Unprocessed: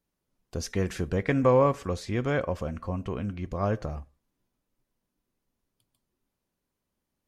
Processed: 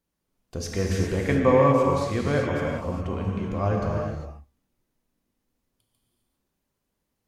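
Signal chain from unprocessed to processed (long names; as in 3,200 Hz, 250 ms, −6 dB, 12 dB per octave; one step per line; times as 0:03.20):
reverb whose tail is shaped and stops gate 430 ms flat, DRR −1.5 dB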